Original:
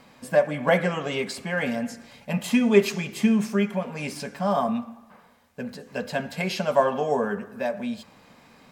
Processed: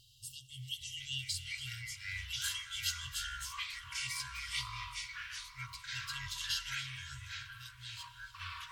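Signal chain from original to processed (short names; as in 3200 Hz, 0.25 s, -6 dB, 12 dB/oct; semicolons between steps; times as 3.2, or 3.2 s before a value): FFT band-reject 130–2700 Hz; tape echo 0.285 s, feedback 56%, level -12 dB, low-pass 5900 Hz; echoes that change speed 0.501 s, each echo -6 st, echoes 3; gain -2 dB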